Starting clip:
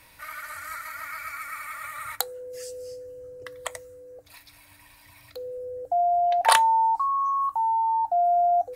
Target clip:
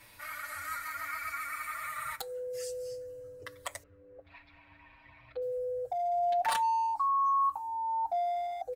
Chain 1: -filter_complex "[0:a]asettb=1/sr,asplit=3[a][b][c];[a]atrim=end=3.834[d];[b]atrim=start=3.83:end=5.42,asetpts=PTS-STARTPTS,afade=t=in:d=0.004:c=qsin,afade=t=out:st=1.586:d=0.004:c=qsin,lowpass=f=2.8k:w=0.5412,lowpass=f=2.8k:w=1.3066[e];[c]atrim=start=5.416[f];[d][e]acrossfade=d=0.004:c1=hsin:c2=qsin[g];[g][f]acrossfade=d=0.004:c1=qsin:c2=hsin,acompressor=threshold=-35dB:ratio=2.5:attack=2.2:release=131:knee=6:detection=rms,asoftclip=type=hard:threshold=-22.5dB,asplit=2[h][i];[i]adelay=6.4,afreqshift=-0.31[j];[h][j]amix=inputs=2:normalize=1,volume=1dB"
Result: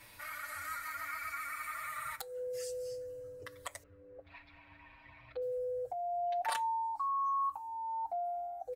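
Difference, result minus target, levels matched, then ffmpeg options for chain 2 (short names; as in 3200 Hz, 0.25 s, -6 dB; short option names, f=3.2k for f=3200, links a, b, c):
compressor: peak gain reduction +6 dB
-filter_complex "[0:a]asettb=1/sr,asplit=3[a][b][c];[a]atrim=end=3.834[d];[b]atrim=start=3.83:end=5.42,asetpts=PTS-STARTPTS,afade=t=in:d=0.004:c=qsin,afade=t=out:st=1.586:d=0.004:c=qsin,lowpass=f=2.8k:w=0.5412,lowpass=f=2.8k:w=1.3066[e];[c]atrim=start=5.416[f];[d][e]acrossfade=d=0.004:c1=hsin:c2=qsin[g];[g][f]acrossfade=d=0.004:c1=qsin:c2=hsin,acompressor=threshold=-25dB:ratio=2.5:attack=2.2:release=131:knee=6:detection=rms,asoftclip=type=hard:threshold=-22.5dB,asplit=2[h][i];[i]adelay=6.4,afreqshift=-0.31[j];[h][j]amix=inputs=2:normalize=1,volume=1dB"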